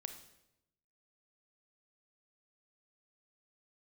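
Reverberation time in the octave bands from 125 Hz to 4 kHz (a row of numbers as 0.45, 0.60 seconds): 1.1, 1.0, 0.95, 0.80, 0.75, 0.75 seconds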